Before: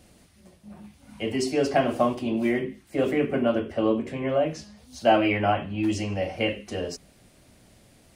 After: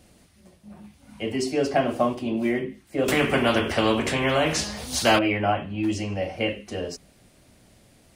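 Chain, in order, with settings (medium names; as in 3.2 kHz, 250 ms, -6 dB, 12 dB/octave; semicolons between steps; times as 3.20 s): 3.08–5.19 s: spectrum-flattening compressor 2:1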